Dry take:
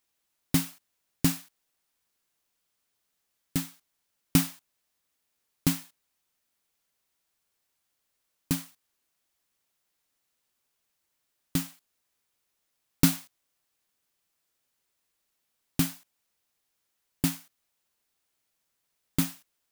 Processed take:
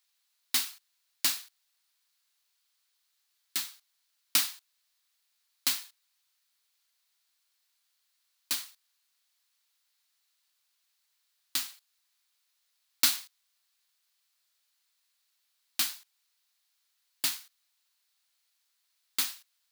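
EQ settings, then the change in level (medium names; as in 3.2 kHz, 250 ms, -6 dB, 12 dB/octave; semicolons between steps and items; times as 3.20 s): high-pass 1.1 kHz 12 dB/octave; peaking EQ 4.2 kHz +7 dB 0.61 oct; +1.5 dB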